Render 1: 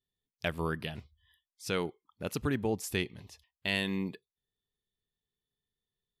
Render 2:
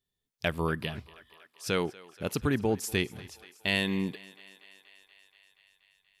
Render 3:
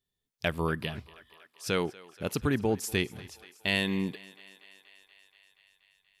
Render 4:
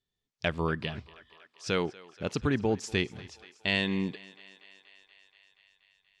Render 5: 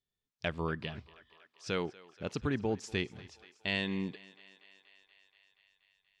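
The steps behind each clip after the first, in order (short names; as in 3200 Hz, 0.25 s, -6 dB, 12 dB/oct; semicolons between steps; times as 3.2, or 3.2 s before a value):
thinning echo 0.239 s, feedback 78%, high-pass 410 Hz, level -20 dB; gain +3.5 dB
nothing audible
LPF 6900 Hz 24 dB/oct
high shelf 8300 Hz -4.5 dB; gain -5 dB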